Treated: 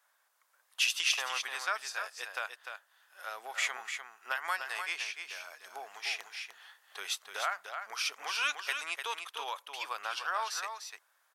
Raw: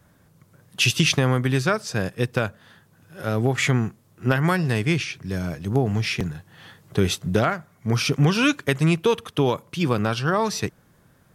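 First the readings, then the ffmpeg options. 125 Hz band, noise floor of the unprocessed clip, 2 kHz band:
under -40 dB, -59 dBFS, -7.0 dB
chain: -af "highpass=f=810:w=0.5412,highpass=f=810:w=1.3066,aecho=1:1:299:0.447,volume=0.398"

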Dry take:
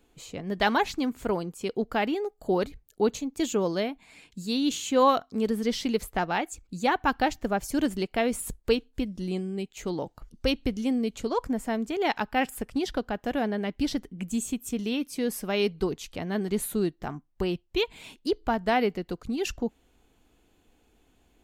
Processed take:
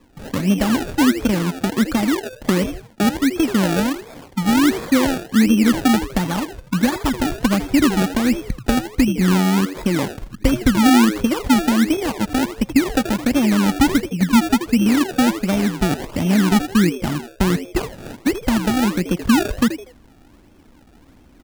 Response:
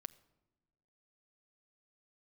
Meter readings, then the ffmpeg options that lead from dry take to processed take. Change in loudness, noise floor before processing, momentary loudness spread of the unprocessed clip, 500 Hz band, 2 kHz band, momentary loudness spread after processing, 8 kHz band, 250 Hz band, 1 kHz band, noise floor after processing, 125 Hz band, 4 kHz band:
+10.5 dB, -66 dBFS, 9 LU, +3.5 dB, +9.0 dB, 7 LU, +10.0 dB, +13.5 dB, +5.0 dB, -49 dBFS, +15.5 dB, +8.5 dB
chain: -filter_complex "[0:a]highshelf=f=2500:g=10,acrossover=split=190[s0][s1];[s1]acompressor=threshold=0.0251:ratio=6[s2];[s0][s2]amix=inputs=2:normalize=0,lowpass=f=4900:w=0.5412,lowpass=f=4900:w=1.3066,equalizer=f=140:t=o:w=1.9:g=14.5,aecho=1:1:3.5:0.55,asplit=4[s3][s4][s5][s6];[s4]adelay=80,afreqshift=90,volume=0.251[s7];[s5]adelay=160,afreqshift=180,volume=0.0804[s8];[s6]adelay=240,afreqshift=270,volume=0.0257[s9];[s3][s7][s8][s9]amix=inputs=4:normalize=0,acrusher=samples=29:mix=1:aa=0.000001:lfo=1:lforange=29:lforate=1.4,dynaudnorm=f=150:g=3:m=1.5,volume=1.58"

